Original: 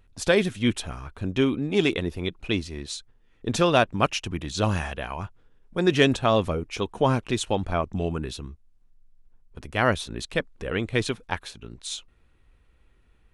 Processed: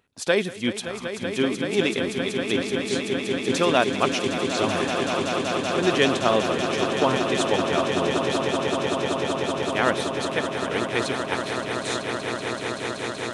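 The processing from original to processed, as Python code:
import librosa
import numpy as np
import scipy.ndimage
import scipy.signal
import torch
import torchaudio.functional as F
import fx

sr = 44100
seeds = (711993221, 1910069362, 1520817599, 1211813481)

y = scipy.signal.sosfilt(scipy.signal.bessel(2, 240.0, 'highpass', norm='mag', fs=sr, output='sos'), x)
y = fx.echo_swell(y, sr, ms=190, loudest=8, wet_db=-9.5)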